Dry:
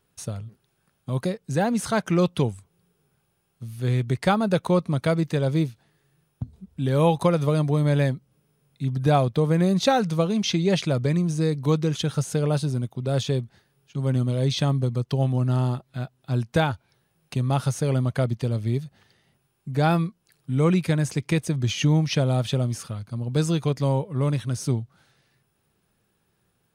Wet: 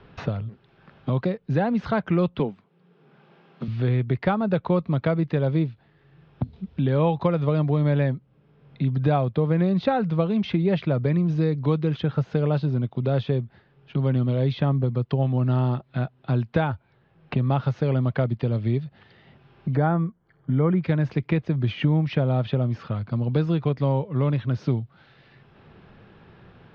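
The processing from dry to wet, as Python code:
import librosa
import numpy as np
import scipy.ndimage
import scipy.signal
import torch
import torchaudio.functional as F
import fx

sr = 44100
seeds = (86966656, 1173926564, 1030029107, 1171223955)

y = fx.steep_highpass(x, sr, hz=160.0, slope=36, at=(2.39, 3.68))
y = fx.savgol(y, sr, points=41, at=(19.75, 20.83), fade=0.02)
y = scipy.signal.sosfilt(scipy.signal.bessel(8, 2400.0, 'lowpass', norm='mag', fs=sr, output='sos'), y)
y = fx.band_squash(y, sr, depth_pct=70)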